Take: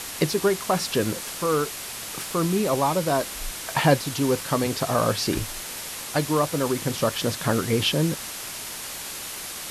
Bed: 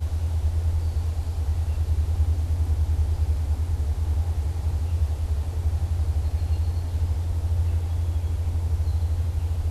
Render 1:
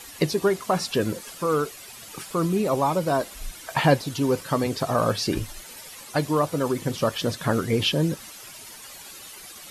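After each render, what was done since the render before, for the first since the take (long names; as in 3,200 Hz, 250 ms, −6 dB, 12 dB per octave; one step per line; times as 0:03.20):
broadband denoise 12 dB, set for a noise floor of −35 dBFS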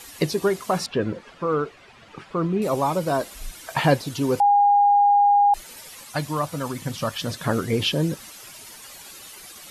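0:00.86–0:02.62: low-pass filter 2,400 Hz
0:04.40–0:05.54: beep over 814 Hz −13 dBFS
0:06.04–0:07.30: parametric band 400 Hz −10 dB 0.9 octaves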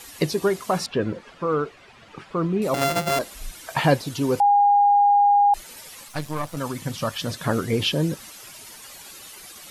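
0:02.74–0:03.19: samples sorted by size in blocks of 64 samples
0:06.08–0:06.57: gain on one half-wave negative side −12 dB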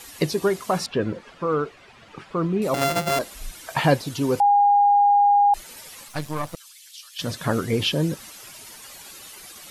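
0:06.55–0:07.19: four-pole ladder high-pass 2,400 Hz, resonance 20%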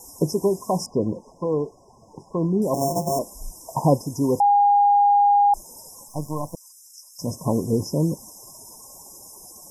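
brick-wall band-stop 1,100–5,000 Hz
dynamic equaliser 220 Hz, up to +3 dB, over −39 dBFS, Q 1.4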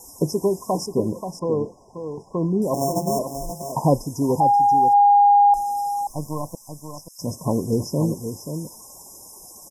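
single-tap delay 532 ms −8.5 dB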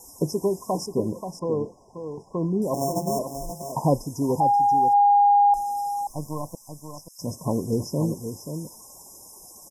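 level −3 dB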